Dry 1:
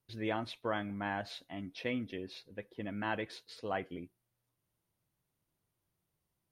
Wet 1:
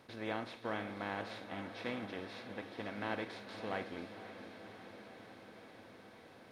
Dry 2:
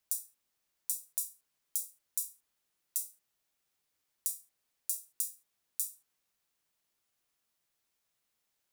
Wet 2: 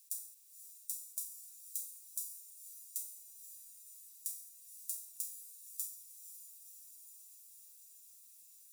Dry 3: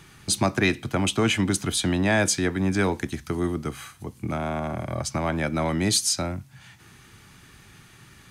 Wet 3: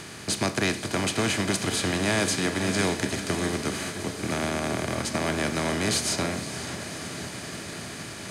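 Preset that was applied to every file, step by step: spectral levelling over time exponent 0.4; echo that smears into a reverb 522 ms, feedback 76%, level -9 dB; upward expansion 1.5:1, over -36 dBFS; trim -7 dB

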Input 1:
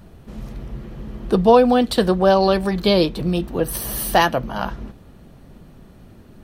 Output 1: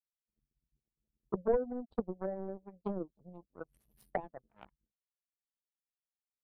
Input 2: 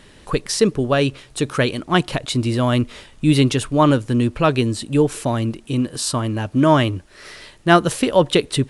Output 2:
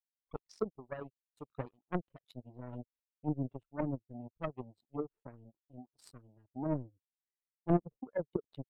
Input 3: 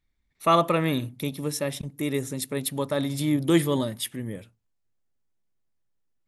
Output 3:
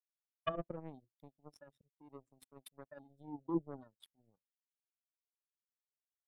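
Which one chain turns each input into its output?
spectral contrast enhancement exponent 2.4; power-law waveshaper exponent 3; low-pass that closes with the level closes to 430 Hz, closed at -26 dBFS; trim -5 dB

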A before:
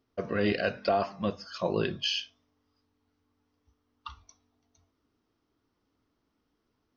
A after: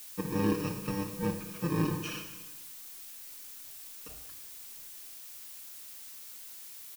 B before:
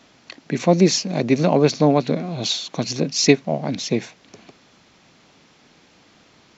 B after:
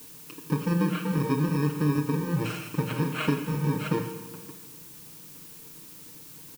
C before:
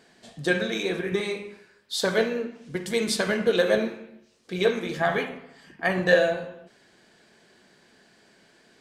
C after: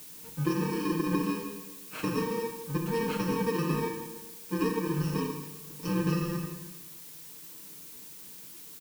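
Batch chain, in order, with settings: bit-reversed sample order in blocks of 64 samples; treble shelf 2.8 kHz -9.5 dB; hum notches 60/120/180 Hz; comb 6.5 ms, depth 85%; compression 6:1, threshold -25 dBFS; tape spacing loss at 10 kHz 23 dB; Schroeder reverb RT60 1.2 s, combs from 27 ms, DRR 6 dB; added noise blue -50 dBFS; trim +3 dB

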